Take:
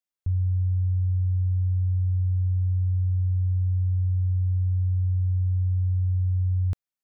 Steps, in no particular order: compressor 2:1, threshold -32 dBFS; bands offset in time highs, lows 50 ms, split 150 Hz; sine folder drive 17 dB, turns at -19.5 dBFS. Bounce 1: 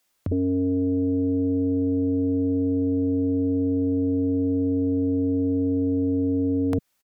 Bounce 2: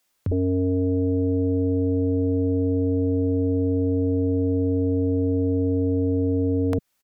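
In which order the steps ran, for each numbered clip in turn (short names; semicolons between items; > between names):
compressor > bands offset in time > sine folder; bands offset in time > compressor > sine folder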